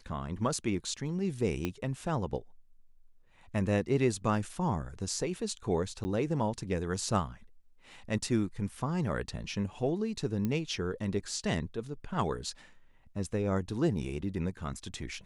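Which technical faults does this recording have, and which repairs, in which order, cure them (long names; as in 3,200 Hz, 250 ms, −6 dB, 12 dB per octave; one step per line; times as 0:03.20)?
0:01.65: click −18 dBFS
0:06.04–0:06.05: drop-out 10 ms
0:10.45: click −20 dBFS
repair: click removal
repair the gap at 0:06.04, 10 ms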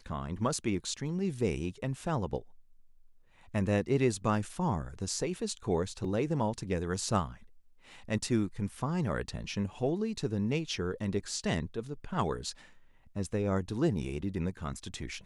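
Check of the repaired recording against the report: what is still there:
0:01.65: click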